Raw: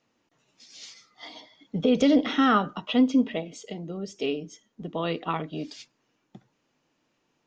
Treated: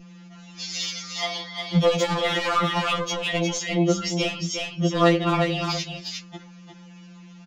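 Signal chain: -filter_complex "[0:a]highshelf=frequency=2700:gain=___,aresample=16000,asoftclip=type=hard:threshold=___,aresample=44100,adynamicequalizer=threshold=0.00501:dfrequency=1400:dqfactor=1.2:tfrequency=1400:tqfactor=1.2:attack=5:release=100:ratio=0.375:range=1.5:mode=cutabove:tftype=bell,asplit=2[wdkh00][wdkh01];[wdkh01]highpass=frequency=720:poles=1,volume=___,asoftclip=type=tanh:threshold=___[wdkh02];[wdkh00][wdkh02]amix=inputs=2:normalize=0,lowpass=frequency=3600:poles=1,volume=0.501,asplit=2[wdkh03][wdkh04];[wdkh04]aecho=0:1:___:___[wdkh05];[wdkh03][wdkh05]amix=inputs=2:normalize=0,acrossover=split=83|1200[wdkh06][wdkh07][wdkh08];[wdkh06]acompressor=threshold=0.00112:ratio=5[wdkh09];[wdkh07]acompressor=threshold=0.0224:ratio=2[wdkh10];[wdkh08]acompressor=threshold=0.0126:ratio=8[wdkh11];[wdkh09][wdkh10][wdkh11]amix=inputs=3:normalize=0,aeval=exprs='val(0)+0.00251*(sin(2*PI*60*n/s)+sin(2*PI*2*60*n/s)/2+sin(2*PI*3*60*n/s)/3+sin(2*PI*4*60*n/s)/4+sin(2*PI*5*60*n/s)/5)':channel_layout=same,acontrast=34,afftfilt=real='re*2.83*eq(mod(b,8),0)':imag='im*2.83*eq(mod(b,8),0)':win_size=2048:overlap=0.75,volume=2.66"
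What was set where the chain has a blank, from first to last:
7, 0.0668, 3.55, 0.0944, 355, 0.422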